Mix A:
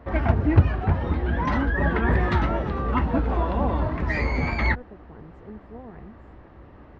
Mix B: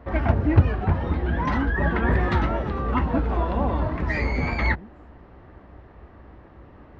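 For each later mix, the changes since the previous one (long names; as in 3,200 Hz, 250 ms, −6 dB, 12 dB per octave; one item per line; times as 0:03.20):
speech: entry −1.25 s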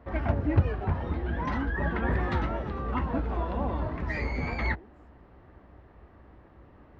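speech: add elliptic high-pass filter 270 Hz
background −6.5 dB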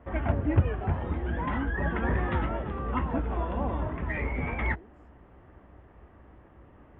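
background: add Butterworth low-pass 3,500 Hz 96 dB per octave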